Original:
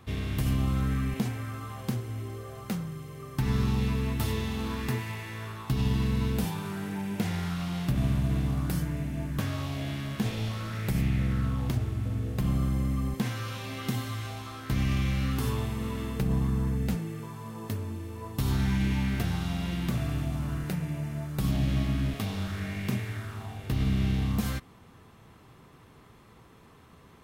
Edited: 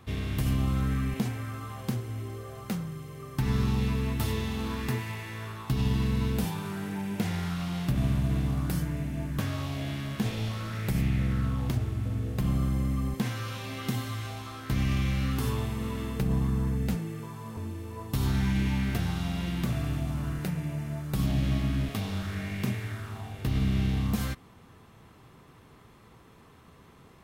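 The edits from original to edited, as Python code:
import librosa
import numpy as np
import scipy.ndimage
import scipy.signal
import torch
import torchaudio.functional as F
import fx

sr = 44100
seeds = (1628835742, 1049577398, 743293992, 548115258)

y = fx.edit(x, sr, fx.cut(start_s=17.57, length_s=0.25), tone=tone)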